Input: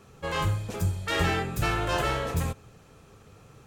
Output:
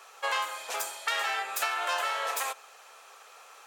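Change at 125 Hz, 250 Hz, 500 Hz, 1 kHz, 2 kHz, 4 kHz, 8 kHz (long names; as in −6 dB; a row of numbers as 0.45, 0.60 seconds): below −40 dB, below −25 dB, −7.0 dB, +0.5 dB, +0.5 dB, +1.0 dB, +4.0 dB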